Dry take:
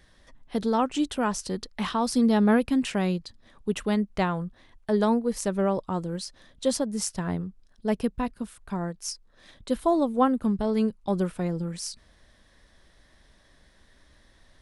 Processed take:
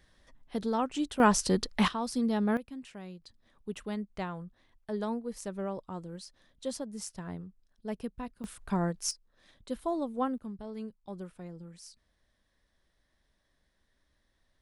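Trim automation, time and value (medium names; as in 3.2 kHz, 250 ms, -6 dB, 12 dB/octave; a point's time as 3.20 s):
-6 dB
from 1.20 s +4 dB
from 1.88 s -8 dB
from 2.57 s -19 dB
from 3.22 s -11 dB
from 8.44 s +1 dB
from 9.11 s -9.5 dB
from 10.38 s -16 dB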